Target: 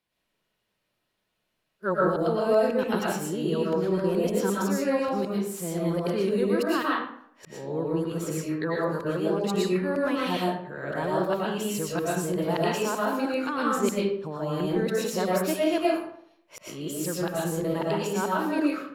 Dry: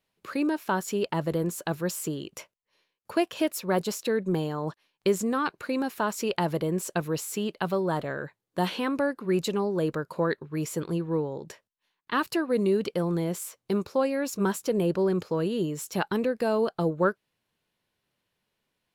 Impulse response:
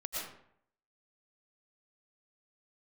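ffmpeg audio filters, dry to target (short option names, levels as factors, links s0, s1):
-filter_complex "[0:a]areverse[s0];[1:a]atrim=start_sample=2205[s1];[s0][s1]afir=irnorm=-1:irlink=0"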